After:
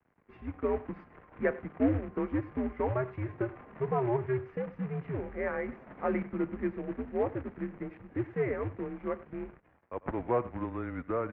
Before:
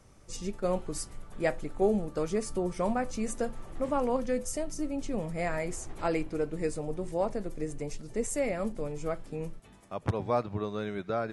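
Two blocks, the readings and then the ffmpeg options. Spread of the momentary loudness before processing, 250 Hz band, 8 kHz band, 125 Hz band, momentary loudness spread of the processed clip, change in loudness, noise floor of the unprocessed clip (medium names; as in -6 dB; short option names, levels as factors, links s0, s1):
8 LU, 0.0 dB, under -40 dB, +1.0 dB, 10 LU, -1.5 dB, -54 dBFS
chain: -filter_complex "[0:a]equalizer=f=100:t=o:w=1.7:g=-5,acrusher=bits=3:mode=log:mix=0:aa=0.000001,aeval=exprs='sgn(val(0))*max(abs(val(0))-0.00141,0)':c=same,asplit=2[s0][s1];[s1]aecho=0:1:96:0.119[s2];[s0][s2]amix=inputs=2:normalize=0,highpass=f=190:t=q:w=0.5412,highpass=f=190:t=q:w=1.307,lowpass=f=2300:t=q:w=0.5176,lowpass=f=2300:t=q:w=0.7071,lowpass=f=2300:t=q:w=1.932,afreqshift=-120"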